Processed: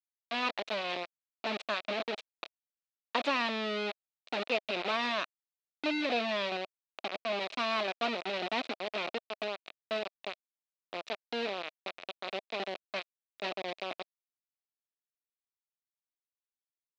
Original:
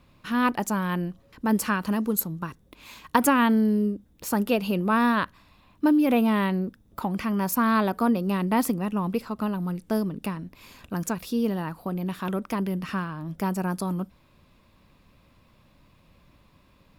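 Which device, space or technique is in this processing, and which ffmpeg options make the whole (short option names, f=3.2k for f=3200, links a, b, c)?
hand-held game console: -filter_complex "[0:a]asettb=1/sr,asplit=3[a][b][c];[a]atrim=end=6.054[d];[b]atrim=start=6.05:end=7.32,asetpts=PTS-STARTPTS,afade=t=in:d=0.004:c=qsin,afade=t=out:st=1.266:d=0.004:c=qsin,lowpass=1.9k[e];[c]atrim=start=7.316[f];[d][e]acrossfade=d=0.004:c1=hsin:c2=qsin[g];[g][f]acrossfade=d=0.004:c1=qsin:c2=hsin,acrusher=bits=3:mix=0:aa=0.000001,highpass=410,equalizer=f=640:t=q:w=4:g=6,equalizer=f=920:t=q:w=4:g=-5,equalizer=f=1.6k:t=q:w=4:g=-4,equalizer=f=2.5k:t=q:w=4:g=7,equalizer=f=3.9k:t=q:w=4:g=7,lowpass=f=4.3k:w=0.5412,lowpass=f=4.3k:w=1.3066,volume=-8.5dB"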